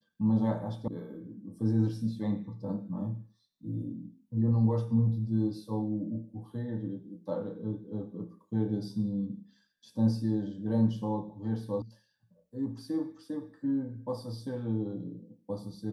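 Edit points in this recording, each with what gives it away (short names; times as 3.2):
0.88 sound cut off
11.82 sound cut off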